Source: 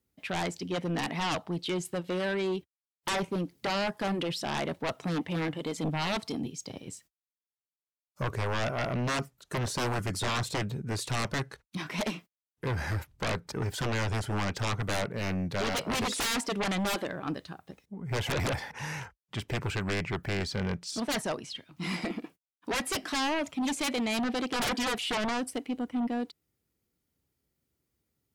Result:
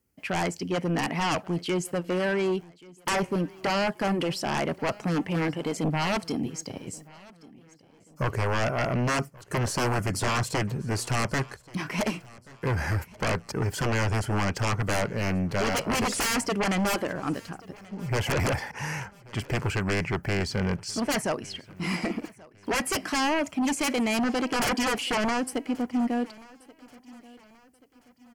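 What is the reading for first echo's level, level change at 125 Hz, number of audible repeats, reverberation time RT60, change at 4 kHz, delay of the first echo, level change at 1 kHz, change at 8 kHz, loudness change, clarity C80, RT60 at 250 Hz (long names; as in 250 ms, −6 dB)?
−23.0 dB, +4.5 dB, 2, no reverb audible, +1.0 dB, 1,132 ms, +4.5 dB, +4.5 dB, +4.0 dB, no reverb audible, no reverb audible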